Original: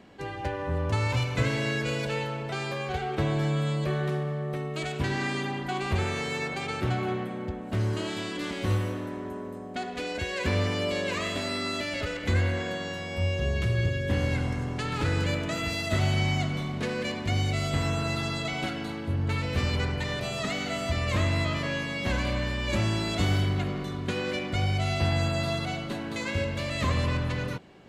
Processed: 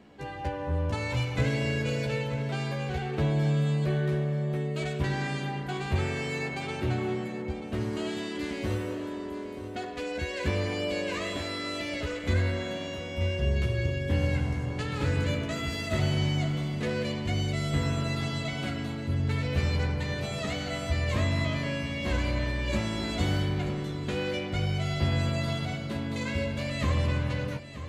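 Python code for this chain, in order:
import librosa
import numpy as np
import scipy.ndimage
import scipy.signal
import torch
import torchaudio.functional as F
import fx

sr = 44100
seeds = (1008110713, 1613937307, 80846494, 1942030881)

y = fx.low_shelf(x, sr, hz=500.0, db=3.0)
y = fx.doubler(y, sr, ms=14.0, db=-5)
y = y + 10.0 ** (-12.5 / 20.0) * np.pad(y, (int(933 * sr / 1000.0), 0))[:len(y)]
y = F.gain(torch.from_numpy(y), -4.5).numpy()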